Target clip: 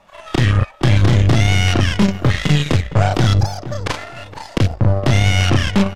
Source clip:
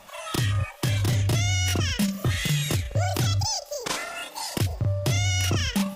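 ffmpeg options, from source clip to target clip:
ffmpeg -i in.wav -filter_complex "[0:a]aemphasis=mode=reproduction:type=75fm,acrossover=split=7300[link_01][link_02];[link_02]acompressor=threshold=-58dB:ratio=4:attack=1:release=60[link_03];[link_01][link_03]amix=inputs=2:normalize=0,aeval=exprs='0.211*(cos(1*acos(clip(val(0)/0.211,-1,1)))-cos(1*PI/2))+0.0376*(cos(4*acos(clip(val(0)/0.211,-1,1)))-cos(4*PI/2))+0.0376*(cos(5*acos(clip(val(0)/0.211,-1,1)))-cos(5*PI/2))+0.0473*(cos(7*acos(clip(val(0)/0.211,-1,1)))-cos(7*PI/2))':channel_layout=same,asplit=2[link_04][link_05];[link_05]adelay=465,lowpass=frequency=1400:poles=1,volume=-12.5dB,asplit=2[link_06][link_07];[link_07]adelay=465,lowpass=frequency=1400:poles=1,volume=0.23,asplit=2[link_08][link_09];[link_09]adelay=465,lowpass=frequency=1400:poles=1,volume=0.23[link_10];[link_04][link_06][link_08][link_10]amix=inputs=4:normalize=0,volume=7.5dB" out.wav

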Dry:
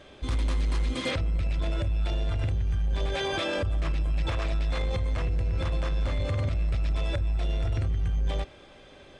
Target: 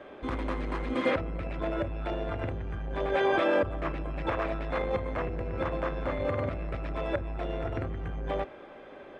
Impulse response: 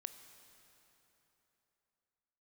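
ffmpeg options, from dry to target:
-filter_complex "[0:a]acrossover=split=210 2100:gain=0.158 1 0.0794[link_01][link_02][link_03];[link_01][link_02][link_03]amix=inputs=3:normalize=0,volume=6dB"

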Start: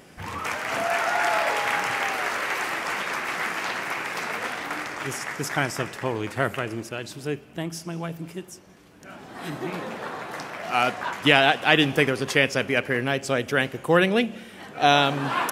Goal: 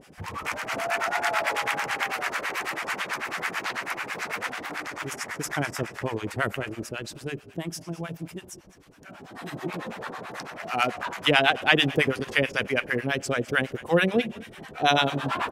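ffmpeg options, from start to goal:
ffmpeg -i in.wav -filter_complex "[0:a]asplit=5[link_01][link_02][link_03][link_04][link_05];[link_02]adelay=202,afreqshift=-42,volume=-20dB[link_06];[link_03]adelay=404,afreqshift=-84,volume=-26.6dB[link_07];[link_04]adelay=606,afreqshift=-126,volume=-33.1dB[link_08];[link_05]adelay=808,afreqshift=-168,volume=-39.7dB[link_09];[link_01][link_06][link_07][link_08][link_09]amix=inputs=5:normalize=0,acrossover=split=720[link_10][link_11];[link_10]aeval=exprs='val(0)*(1-1/2+1/2*cos(2*PI*9.1*n/s))':channel_layout=same[link_12];[link_11]aeval=exprs='val(0)*(1-1/2-1/2*cos(2*PI*9.1*n/s))':channel_layout=same[link_13];[link_12][link_13]amix=inputs=2:normalize=0,volume=2dB" out.wav

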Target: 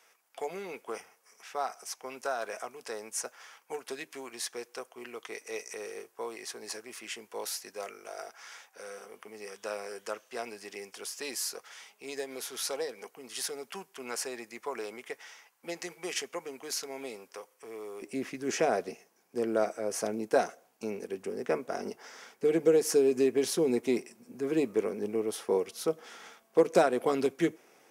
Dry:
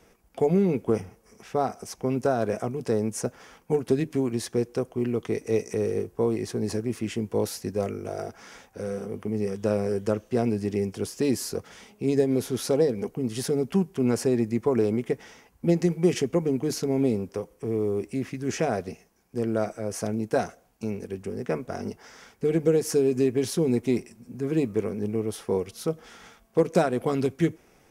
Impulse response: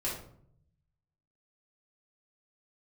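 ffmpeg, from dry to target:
-af "asetnsamples=nb_out_samples=441:pad=0,asendcmd='18.02 highpass f 340',highpass=1000"

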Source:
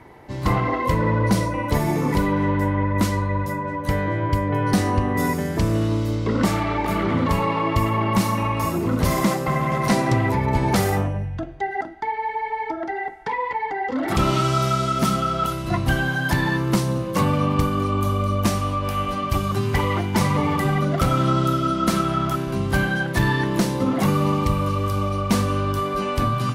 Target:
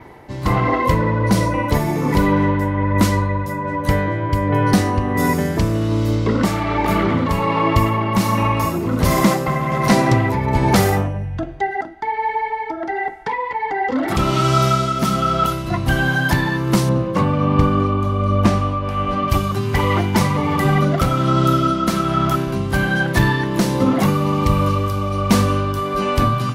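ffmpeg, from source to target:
ffmpeg -i in.wav -filter_complex "[0:a]asettb=1/sr,asplit=3[link_01][link_02][link_03];[link_01]atrim=end=16.894[link_04];[link_02]atrim=start=16.89:end=19.28,asetpts=PTS-STARTPTS,afade=type=in:duration=0.004:curve=qsin,afade=type=out:start_time=2.386:duration=0.004:curve=qsin,aemphasis=mode=reproduction:type=75fm[link_05];[link_03]atrim=start=19.276[link_06];[link_04][link_05]acrossfade=duration=0.004:curve1=hsin:curve2=qsin[link_07];[link_07][link_06]acrossfade=duration=0.004:curve1=qsin:curve2=hsin,tremolo=f=1.3:d=0.38,adynamicequalizer=threshold=0.002:dfrequency=9000:dqfactor=2.3:tfrequency=9000:tqfactor=2.3:attack=5:release=100:ratio=0.375:range=1.5:mode=cutabove:tftype=bell,volume=5.5dB" out.wav

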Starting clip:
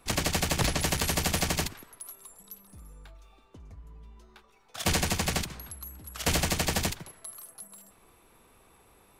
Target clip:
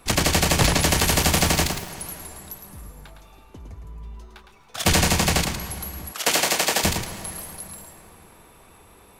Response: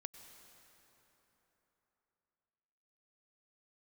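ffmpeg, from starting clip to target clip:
-filter_complex "[0:a]asplit=2[link_01][link_02];[link_02]equalizer=frequency=960:width=5:gain=4[link_03];[1:a]atrim=start_sample=2205,adelay=110[link_04];[link_03][link_04]afir=irnorm=-1:irlink=0,volume=-1.5dB[link_05];[link_01][link_05]amix=inputs=2:normalize=0,asettb=1/sr,asplit=3[link_06][link_07][link_08];[link_06]atrim=end=1.044[link_09];[link_07]atrim=start=1.04:end=1.9,asetpts=PTS-STARTPTS,afade=type=in:duration=0.004:curve=qsin,afade=type=out:start_time=0.856:duration=0.004:curve=qsin,aeval=exprs='val(0)*gte(abs(val(0)),0.00841)':channel_layout=same[link_10];[link_08]atrim=start=1.896[link_11];[link_09][link_10]acrossfade=duration=0.004:curve1=hsin:curve2=qsin[link_12];[link_12][link_11]acrossfade=duration=0.004:curve1=qsin:curve2=hsin,asettb=1/sr,asplit=3[link_13][link_14][link_15];[link_13]atrim=end=6.124[link_16];[link_14]atrim=start=6.12:end=6.84,asetpts=PTS-STARTPTS,afade=type=in:duration=0.004:curve=qsin,afade=type=out:start_time=0.716:duration=0.004:curve=qsin,highpass=390[link_17];[link_15]atrim=start=6.836[link_18];[link_16][link_17]acrossfade=duration=0.004:curve1=hsin:curve2=qsin[link_19];[link_19][link_18]acrossfade=duration=0.004:curve1=qsin:curve2=hsin,volume=7.5dB"

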